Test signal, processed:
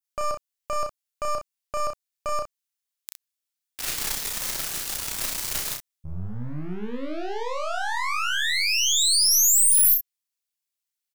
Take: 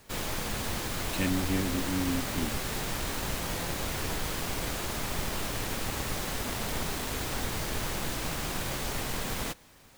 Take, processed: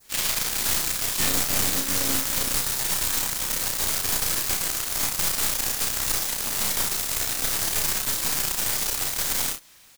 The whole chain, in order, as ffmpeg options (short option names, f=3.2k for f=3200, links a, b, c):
-filter_complex "[0:a]aeval=exprs='0.211*(cos(1*acos(clip(val(0)/0.211,-1,1)))-cos(1*PI/2))+0.0119*(cos(3*acos(clip(val(0)/0.211,-1,1)))-cos(3*PI/2))+0.0596*(cos(6*acos(clip(val(0)/0.211,-1,1)))-cos(6*PI/2))+0.0015*(cos(8*acos(clip(val(0)/0.211,-1,1)))-cos(8*PI/2))':c=same,adynamicequalizer=threshold=0.00562:dfrequency=2800:dqfactor=0.83:tfrequency=2800:tqfactor=0.83:attack=5:release=100:ratio=0.375:range=3:mode=cutabove:tftype=bell,asplit=2[a][b];[b]acrusher=bits=4:mix=0:aa=0.5,volume=-9.5dB[c];[a][c]amix=inputs=2:normalize=0,tiltshelf=f=1.4k:g=-8.5,aecho=1:1:33|63:0.668|0.376"